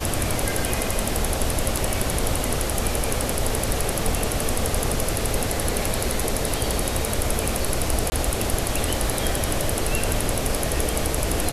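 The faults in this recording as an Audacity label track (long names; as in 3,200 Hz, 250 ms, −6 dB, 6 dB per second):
8.100000	8.120000	drop-out 20 ms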